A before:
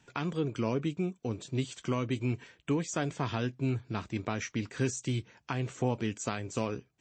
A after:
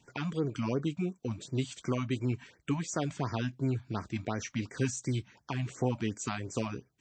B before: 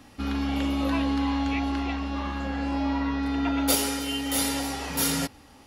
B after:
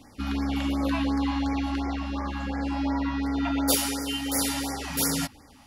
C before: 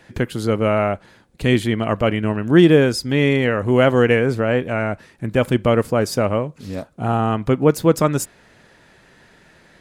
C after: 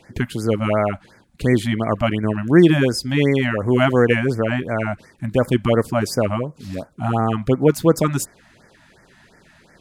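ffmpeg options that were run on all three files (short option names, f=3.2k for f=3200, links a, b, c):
-af "afftfilt=real='re*(1-between(b*sr/1024,380*pow(3400/380,0.5+0.5*sin(2*PI*2.8*pts/sr))/1.41,380*pow(3400/380,0.5+0.5*sin(2*PI*2.8*pts/sr))*1.41))':imag='im*(1-between(b*sr/1024,380*pow(3400/380,0.5+0.5*sin(2*PI*2.8*pts/sr))/1.41,380*pow(3400/380,0.5+0.5*sin(2*PI*2.8*pts/sr))*1.41))':win_size=1024:overlap=0.75"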